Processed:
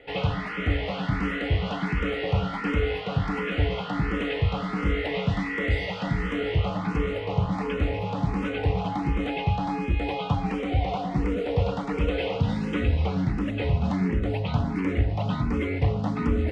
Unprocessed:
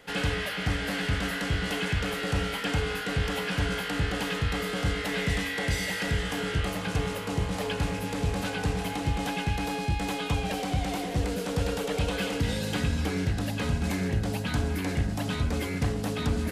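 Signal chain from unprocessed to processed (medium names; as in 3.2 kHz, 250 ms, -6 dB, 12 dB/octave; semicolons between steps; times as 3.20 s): low-pass 2.3 kHz 12 dB/octave; band-stop 1.6 kHz, Q 5.3; barber-pole phaser +1.4 Hz; trim +6.5 dB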